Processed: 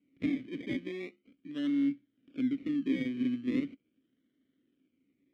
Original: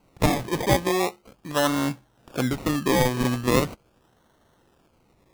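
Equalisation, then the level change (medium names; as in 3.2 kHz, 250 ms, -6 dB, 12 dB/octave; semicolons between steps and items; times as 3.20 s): vowel filter i; treble shelf 2.7 kHz -9.5 dB; 0.0 dB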